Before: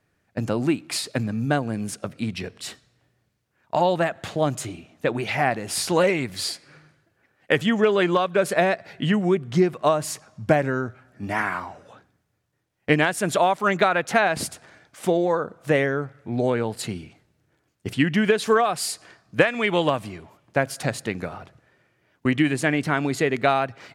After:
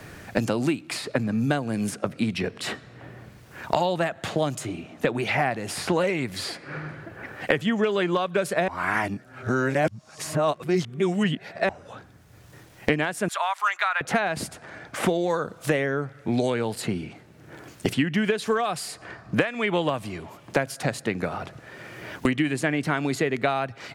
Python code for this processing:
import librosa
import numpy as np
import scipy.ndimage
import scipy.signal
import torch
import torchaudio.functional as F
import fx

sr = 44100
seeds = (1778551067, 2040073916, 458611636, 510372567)

y = fx.highpass(x, sr, hz=980.0, slope=24, at=(13.28, 14.01))
y = fx.edit(y, sr, fx.reverse_span(start_s=8.68, length_s=3.01), tone=tone)
y = fx.band_squash(y, sr, depth_pct=100)
y = y * librosa.db_to_amplitude(-3.0)